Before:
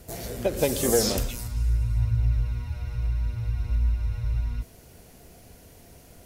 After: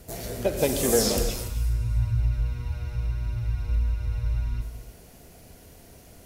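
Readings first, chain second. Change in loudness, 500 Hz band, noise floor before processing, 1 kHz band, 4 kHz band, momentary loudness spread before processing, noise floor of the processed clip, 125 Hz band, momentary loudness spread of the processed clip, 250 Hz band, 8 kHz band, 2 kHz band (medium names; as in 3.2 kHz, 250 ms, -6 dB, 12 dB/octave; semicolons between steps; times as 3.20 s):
0.0 dB, +0.5 dB, -51 dBFS, +1.0 dB, +1.0 dB, 11 LU, -51 dBFS, -0.5 dB, 11 LU, +0.5 dB, +1.0 dB, +0.5 dB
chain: gated-style reverb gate 320 ms flat, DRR 6.5 dB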